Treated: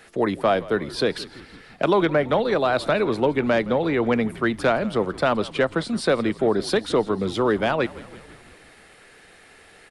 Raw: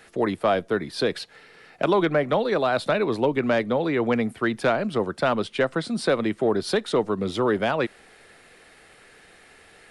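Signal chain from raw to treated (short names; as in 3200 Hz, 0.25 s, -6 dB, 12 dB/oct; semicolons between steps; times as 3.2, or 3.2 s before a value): frequency-shifting echo 0.167 s, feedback 64%, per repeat -65 Hz, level -19 dB; gain +1.5 dB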